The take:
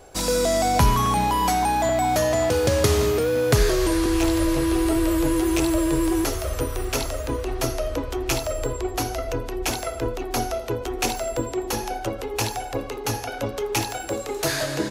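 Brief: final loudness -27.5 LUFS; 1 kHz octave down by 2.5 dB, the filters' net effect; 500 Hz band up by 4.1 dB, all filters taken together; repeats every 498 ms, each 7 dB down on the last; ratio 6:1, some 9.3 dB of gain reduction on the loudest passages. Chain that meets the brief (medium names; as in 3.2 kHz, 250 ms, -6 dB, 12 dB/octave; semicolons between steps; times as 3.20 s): peaking EQ 500 Hz +7 dB; peaking EQ 1 kHz -7 dB; compression 6:1, threshold -22 dBFS; feedback delay 498 ms, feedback 45%, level -7 dB; trim -2 dB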